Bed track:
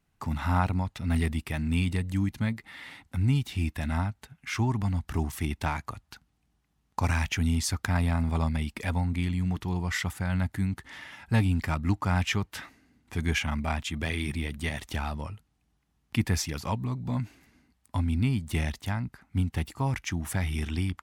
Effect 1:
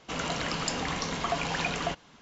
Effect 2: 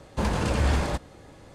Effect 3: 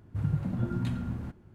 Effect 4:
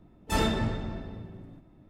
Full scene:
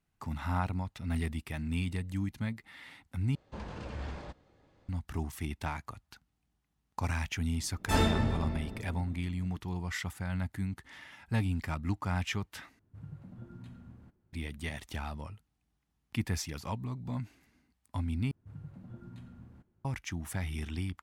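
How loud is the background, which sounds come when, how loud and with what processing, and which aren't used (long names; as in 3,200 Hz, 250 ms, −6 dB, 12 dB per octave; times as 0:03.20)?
bed track −6.5 dB
0:03.35: overwrite with 2 −16.5 dB + low-pass filter 4,900 Hz
0:07.59: mix in 4 −1.5 dB
0:12.79: overwrite with 3 −17.5 dB
0:18.31: overwrite with 3 −17.5 dB
not used: 1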